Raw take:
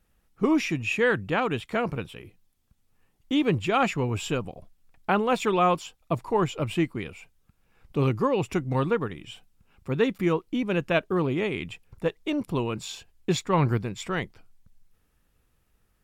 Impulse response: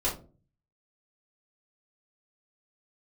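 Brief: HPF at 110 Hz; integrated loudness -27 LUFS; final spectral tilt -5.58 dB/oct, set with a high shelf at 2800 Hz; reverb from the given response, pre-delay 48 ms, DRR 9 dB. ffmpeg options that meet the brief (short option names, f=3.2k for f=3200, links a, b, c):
-filter_complex "[0:a]highpass=110,highshelf=f=2.8k:g=-5,asplit=2[a][b];[1:a]atrim=start_sample=2205,adelay=48[c];[b][c]afir=irnorm=-1:irlink=0,volume=-17dB[d];[a][d]amix=inputs=2:normalize=0,volume=-0.5dB"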